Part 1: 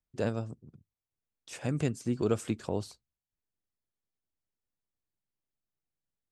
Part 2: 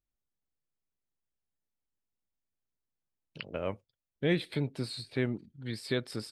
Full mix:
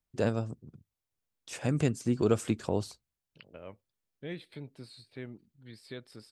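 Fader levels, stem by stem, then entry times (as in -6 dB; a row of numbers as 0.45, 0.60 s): +2.5, -12.0 dB; 0.00, 0.00 s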